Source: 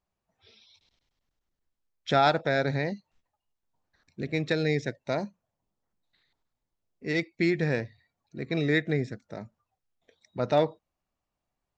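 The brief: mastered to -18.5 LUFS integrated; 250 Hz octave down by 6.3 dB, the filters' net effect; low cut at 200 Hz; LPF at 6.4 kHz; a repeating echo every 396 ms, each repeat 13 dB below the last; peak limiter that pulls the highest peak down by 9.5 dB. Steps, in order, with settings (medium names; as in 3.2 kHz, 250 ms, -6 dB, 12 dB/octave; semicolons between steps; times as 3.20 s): high-pass 200 Hz; low-pass 6.4 kHz; peaking EQ 250 Hz -7.5 dB; peak limiter -20.5 dBFS; feedback delay 396 ms, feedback 22%, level -13 dB; trim +16 dB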